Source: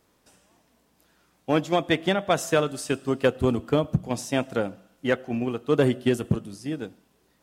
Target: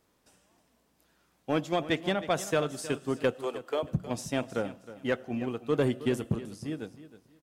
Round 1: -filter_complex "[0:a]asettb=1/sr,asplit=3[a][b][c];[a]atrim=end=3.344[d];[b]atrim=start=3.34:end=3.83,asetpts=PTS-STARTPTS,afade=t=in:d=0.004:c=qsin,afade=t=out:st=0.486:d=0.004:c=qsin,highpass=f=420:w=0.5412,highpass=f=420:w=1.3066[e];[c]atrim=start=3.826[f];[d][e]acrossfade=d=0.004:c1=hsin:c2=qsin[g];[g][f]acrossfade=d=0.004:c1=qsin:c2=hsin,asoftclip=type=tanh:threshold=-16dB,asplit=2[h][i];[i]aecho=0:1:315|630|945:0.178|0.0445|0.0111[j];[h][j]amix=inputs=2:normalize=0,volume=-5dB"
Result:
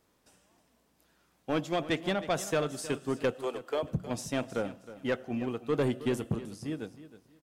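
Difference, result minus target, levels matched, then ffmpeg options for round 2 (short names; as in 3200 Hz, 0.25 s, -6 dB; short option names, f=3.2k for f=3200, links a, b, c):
soft clip: distortion +10 dB
-filter_complex "[0:a]asettb=1/sr,asplit=3[a][b][c];[a]atrim=end=3.344[d];[b]atrim=start=3.34:end=3.83,asetpts=PTS-STARTPTS,afade=t=in:d=0.004:c=qsin,afade=t=out:st=0.486:d=0.004:c=qsin,highpass=f=420:w=0.5412,highpass=f=420:w=1.3066[e];[c]atrim=start=3.826[f];[d][e]acrossfade=d=0.004:c1=hsin:c2=qsin[g];[g][f]acrossfade=d=0.004:c1=qsin:c2=hsin,asoftclip=type=tanh:threshold=-9.5dB,asplit=2[h][i];[i]aecho=0:1:315|630|945:0.178|0.0445|0.0111[j];[h][j]amix=inputs=2:normalize=0,volume=-5dB"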